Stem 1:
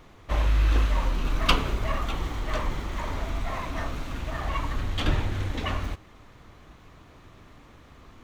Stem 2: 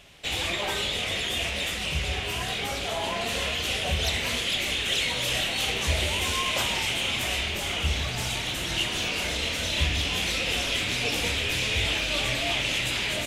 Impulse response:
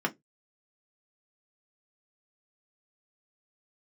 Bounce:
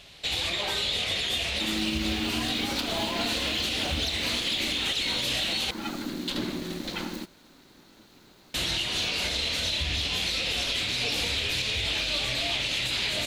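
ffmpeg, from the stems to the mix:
-filter_complex "[0:a]aemphasis=mode=production:type=75kf,aeval=exprs='val(0)*sin(2*PI*270*n/s)':channel_layout=same,adelay=1300,volume=-4dB[link_01];[1:a]volume=0dB,asplit=3[link_02][link_03][link_04];[link_02]atrim=end=5.71,asetpts=PTS-STARTPTS,afade=type=out:start_time=5.706:duration=0.004:curve=hsin[link_05];[link_03]atrim=start=5.71:end=8.54,asetpts=PTS-STARTPTS,volume=0[link_06];[link_04]atrim=start=8.54,asetpts=PTS-STARTPTS,afade=type=in:duration=0.004:curve=hsin[link_07];[link_05][link_06][link_07]concat=n=3:v=0:a=1[link_08];[link_01][link_08]amix=inputs=2:normalize=0,equalizer=frequency=4200:width=2.7:gain=10,volume=7.5dB,asoftclip=hard,volume=-7.5dB,alimiter=limit=-18.5dB:level=0:latency=1:release=162"

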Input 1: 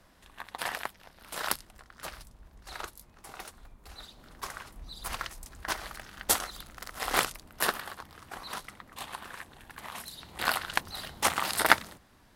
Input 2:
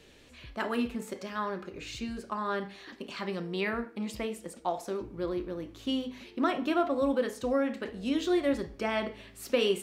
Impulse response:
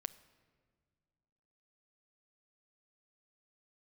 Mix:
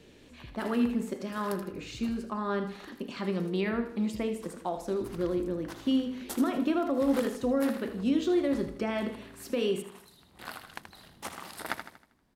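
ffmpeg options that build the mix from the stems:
-filter_complex "[0:a]volume=-15dB,asplit=2[link_01][link_02];[link_02]volume=-8.5dB[link_03];[1:a]alimiter=limit=-22dB:level=0:latency=1:release=78,volume=-2.5dB,asplit=2[link_04][link_05];[link_05]volume=-12dB[link_06];[link_03][link_06]amix=inputs=2:normalize=0,aecho=0:1:79|158|237|316|395|474:1|0.43|0.185|0.0795|0.0342|0.0147[link_07];[link_01][link_04][link_07]amix=inputs=3:normalize=0,equalizer=frequency=210:width=0.52:gain=8"

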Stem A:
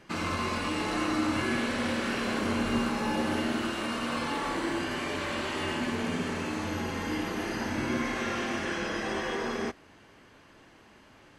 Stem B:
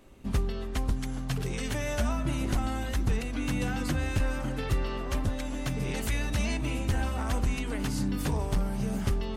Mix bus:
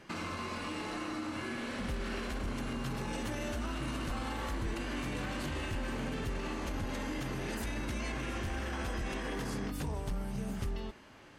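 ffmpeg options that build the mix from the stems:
ffmpeg -i stem1.wav -i stem2.wav -filter_complex "[0:a]acompressor=threshold=-36dB:ratio=6,volume=0dB[link_01];[1:a]adelay=1550,volume=-6.5dB[link_02];[link_01][link_02]amix=inputs=2:normalize=0,alimiter=level_in=4.5dB:limit=-24dB:level=0:latency=1:release=17,volume=-4.5dB" out.wav

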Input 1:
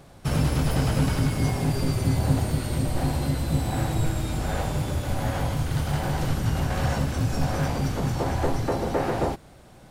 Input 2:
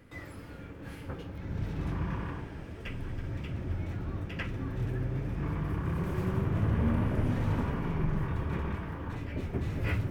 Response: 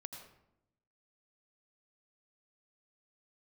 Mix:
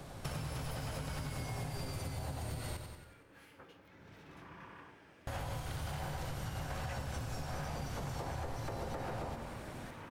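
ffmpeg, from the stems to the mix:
-filter_complex "[0:a]acompressor=threshold=-30dB:ratio=6,acrossover=split=190|410[link_01][link_02][link_03];[link_01]acompressor=threshold=-36dB:ratio=4[link_04];[link_02]acompressor=threshold=-59dB:ratio=4[link_05];[link_03]acompressor=threshold=-36dB:ratio=4[link_06];[link_04][link_05][link_06]amix=inputs=3:normalize=0,volume=-2dB,asplit=3[link_07][link_08][link_09];[link_07]atrim=end=2.77,asetpts=PTS-STARTPTS,afade=type=out:start_time=2.766:duration=0.004:curve=hsin[link_10];[link_08]atrim=start=2.77:end=5.27,asetpts=PTS-STARTPTS,volume=0[link_11];[link_09]atrim=start=5.27,asetpts=PTS-STARTPTS,afade=type=in:duration=0.004:curve=hsin[link_12];[link_10][link_11][link_12]concat=n=3:v=0:a=1,asplit=3[link_13][link_14][link_15];[link_14]volume=-2dB[link_16];[link_15]volume=-7dB[link_17];[1:a]highpass=frequency=790:poles=1,adelay=2500,volume=-8.5dB[link_18];[2:a]atrim=start_sample=2205[link_19];[link_16][link_19]afir=irnorm=-1:irlink=0[link_20];[link_17]aecho=0:1:92|184|276|368|460|552|644|736:1|0.54|0.292|0.157|0.085|0.0459|0.0248|0.0134[link_21];[link_13][link_18][link_20][link_21]amix=inputs=4:normalize=0,acompressor=threshold=-38dB:ratio=3"

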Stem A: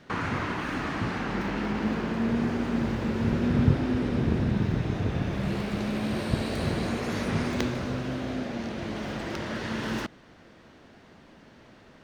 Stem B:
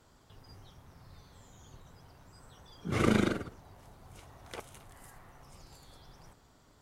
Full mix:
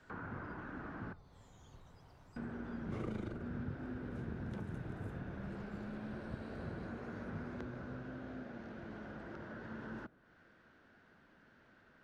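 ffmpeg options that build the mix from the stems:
ffmpeg -i stem1.wav -i stem2.wav -filter_complex "[0:a]equalizer=frequency=1500:width_type=o:width=0.42:gain=12.5,volume=-10dB,asplit=3[link_01][link_02][link_03];[link_01]atrim=end=1.13,asetpts=PTS-STARTPTS,afade=type=out:start_time=1.126:duration=0.004:curve=hsin[link_04];[link_02]atrim=start=1.13:end=2.36,asetpts=PTS-STARTPTS,volume=0[link_05];[link_03]atrim=start=2.36,asetpts=PTS-STARTPTS,afade=type=in:duration=0.004:curve=hsin[link_06];[link_04][link_05][link_06]concat=n=3:v=0:a=1[link_07];[1:a]volume=0.5dB[link_08];[link_07][link_08]amix=inputs=2:normalize=0,highshelf=frequency=7400:gain=-12,acrossover=split=120|1100[link_09][link_10][link_11];[link_09]acompressor=threshold=-41dB:ratio=4[link_12];[link_10]acompressor=threshold=-37dB:ratio=4[link_13];[link_11]acompressor=threshold=-56dB:ratio=4[link_14];[link_12][link_13][link_14]amix=inputs=3:normalize=0,flanger=delay=3.2:depth=3.6:regen=-89:speed=1.1:shape=triangular" out.wav

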